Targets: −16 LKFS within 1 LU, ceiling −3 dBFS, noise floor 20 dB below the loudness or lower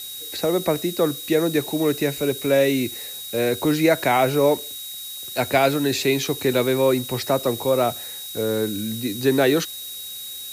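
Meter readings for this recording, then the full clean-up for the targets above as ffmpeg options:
interfering tone 3,800 Hz; level of the tone −35 dBFS; background noise floor −35 dBFS; target noise floor −42 dBFS; integrated loudness −22.0 LKFS; sample peak −6.0 dBFS; target loudness −16.0 LKFS
→ -af "bandreject=frequency=3800:width=30"
-af "afftdn=noise_reduction=7:noise_floor=-35"
-af "volume=6dB,alimiter=limit=-3dB:level=0:latency=1"

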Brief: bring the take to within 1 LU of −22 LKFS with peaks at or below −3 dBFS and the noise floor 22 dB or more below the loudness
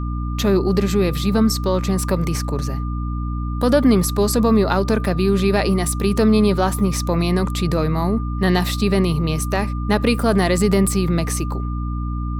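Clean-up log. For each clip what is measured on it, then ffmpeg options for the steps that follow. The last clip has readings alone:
mains hum 60 Hz; hum harmonics up to 300 Hz; level of the hum −21 dBFS; interfering tone 1,200 Hz; level of the tone −34 dBFS; integrated loudness −19.0 LKFS; sample peak −2.5 dBFS; target loudness −22.0 LKFS
→ -af "bandreject=frequency=60:width_type=h:width=6,bandreject=frequency=120:width_type=h:width=6,bandreject=frequency=180:width_type=h:width=6,bandreject=frequency=240:width_type=h:width=6,bandreject=frequency=300:width_type=h:width=6"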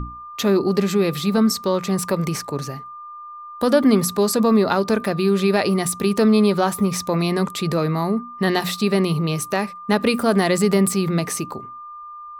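mains hum none found; interfering tone 1,200 Hz; level of the tone −34 dBFS
→ -af "bandreject=frequency=1200:width=30"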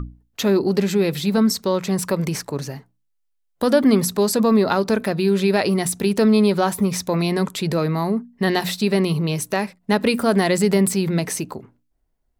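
interfering tone none found; integrated loudness −20.0 LKFS; sample peak −4.0 dBFS; target loudness −22.0 LKFS
→ -af "volume=-2dB"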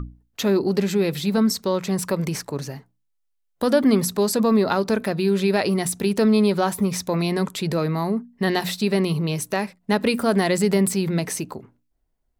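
integrated loudness −22.0 LKFS; sample peak −6.0 dBFS; background noise floor −71 dBFS

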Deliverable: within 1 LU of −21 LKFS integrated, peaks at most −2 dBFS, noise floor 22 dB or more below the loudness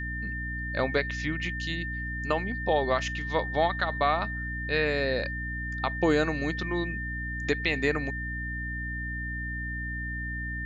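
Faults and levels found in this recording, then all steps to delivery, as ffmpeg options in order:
mains hum 60 Hz; hum harmonics up to 300 Hz; level of the hum −33 dBFS; interfering tone 1,800 Hz; level of the tone −34 dBFS; integrated loudness −29.5 LKFS; sample peak −12.5 dBFS; target loudness −21.0 LKFS
→ -af "bandreject=frequency=60:width_type=h:width=4,bandreject=frequency=120:width_type=h:width=4,bandreject=frequency=180:width_type=h:width=4,bandreject=frequency=240:width_type=h:width=4,bandreject=frequency=300:width_type=h:width=4"
-af "bandreject=frequency=1800:width=30"
-af "volume=8.5dB"

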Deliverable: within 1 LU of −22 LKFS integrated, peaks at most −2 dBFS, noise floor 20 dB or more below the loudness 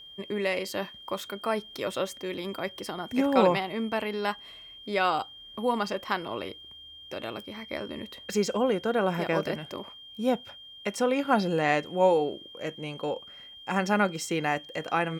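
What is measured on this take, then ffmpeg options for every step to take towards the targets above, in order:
interfering tone 3,200 Hz; level of the tone −45 dBFS; integrated loudness −29.0 LKFS; sample peak −8.0 dBFS; target loudness −22.0 LKFS
→ -af "bandreject=frequency=3200:width=30"
-af "volume=7dB,alimiter=limit=-2dB:level=0:latency=1"

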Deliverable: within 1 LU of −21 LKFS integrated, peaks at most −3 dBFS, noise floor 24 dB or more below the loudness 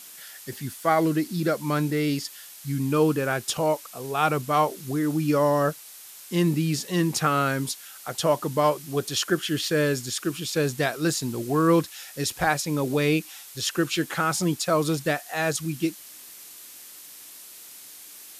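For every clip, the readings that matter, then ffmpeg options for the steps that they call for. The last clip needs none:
background noise floor −45 dBFS; target noise floor −49 dBFS; integrated loudness −25.0 LKFS; sample peak −8.0 dBFS; target loudness −21.0 LKFS
→ -af "afftdn=noise_reduction=6:noise_floor=-45"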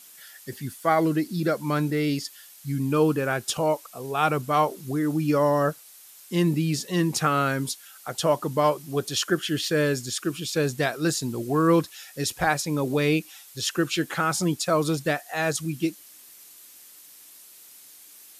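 background noise floor −49 dBFS; integrated loudness −25.0 LKFS; sample peak −8.0 dBFS; target loudness −21.0 LKFS
→ -af "volume=4dB"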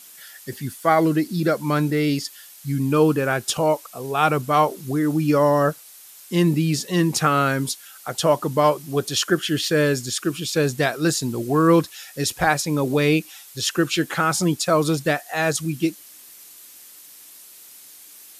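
integrated loudness −21.0 LKFS; sample peak −4.0 dBFS; background noise floor −45 dBFS

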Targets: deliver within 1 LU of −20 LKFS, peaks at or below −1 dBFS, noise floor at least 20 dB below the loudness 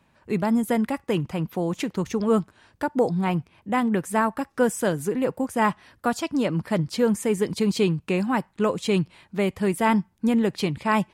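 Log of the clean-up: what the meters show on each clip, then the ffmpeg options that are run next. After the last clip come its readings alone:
integrated loudness −24.5 LKFS; sample peak −9.0 dBFS; target loudness −20.0 LKFS
→ -af "volume=4.5dB"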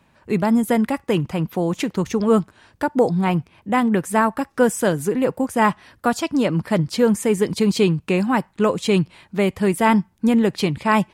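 integrated loudness −20.0 LKFS; sample peak −4.5 dBFS; background noise floor −59 dBFS

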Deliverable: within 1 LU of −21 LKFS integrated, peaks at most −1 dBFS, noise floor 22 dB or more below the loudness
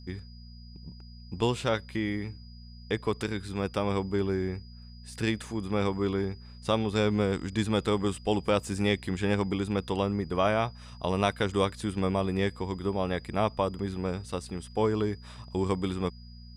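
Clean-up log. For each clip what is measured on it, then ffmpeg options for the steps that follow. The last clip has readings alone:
mains hum 60 Hz; hum harmonics up to 240 Hz; level of the hum −45 dBFS; interfering tone 4,900 Hz; level of the tone −55 dBFS; integrated loudness −30.0 LKFS; sample peak −12.5 dBFS; target loudness −21.0 LKFS
→ -af "bandreject=frequency=60:width_type=h:width=4,bandreject=frequency=120:width_type=h:width=4,bandreject=frequency=180:width_type=h:width=4,bandreject=frequency=240:width_type=h:width=4"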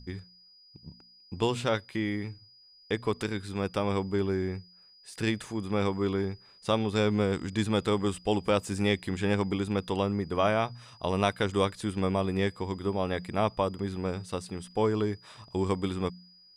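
mains hum none found; interfering tone 4,900 Hz; level of the tone −55 dBFS
→ -af "bandreject=frequency=4900:width=30"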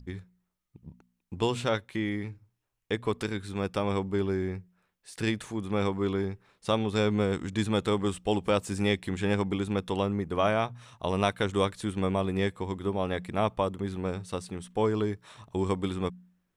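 interfering tone none found; integrated loudness −30.0 LKFS; sample peak −12.5 dBFS; target loudness −21.0 LKFS
→ -af "volume=9dB"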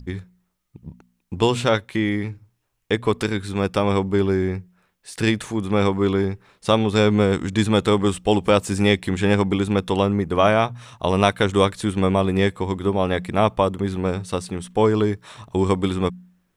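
integrated loudness −21.0 LKFS; sample peak −3.5 dBFS; background noise floor −71 dBFS

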